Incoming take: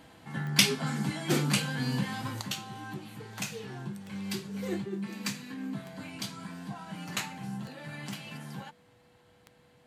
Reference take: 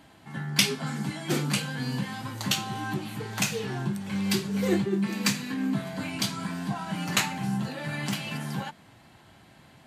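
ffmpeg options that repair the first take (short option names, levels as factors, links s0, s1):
-af "adeclick=t=4,bandreject=f=490:w=30,asetnsamples=n=441:p=0,asendcmd='2.41 volume volume 9dB',volume=1"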